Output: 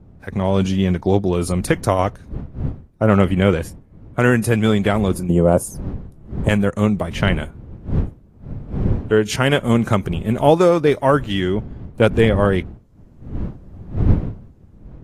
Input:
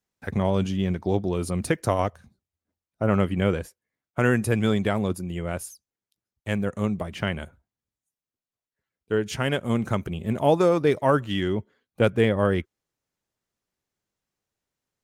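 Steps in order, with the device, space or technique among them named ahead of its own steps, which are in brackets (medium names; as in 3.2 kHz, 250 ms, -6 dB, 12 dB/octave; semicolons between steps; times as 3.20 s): 5.29–6.49 s: graphic EQ 125/250/500/1000/2000/4000/8000 Hz +10/+9/+11/+9/-11/-6/+6 dB; smartphone video outdoors (wind noise 150 Hz -35 dBFS; level rider gain up to 11 dB; AAC 48 kbps 32 kHz)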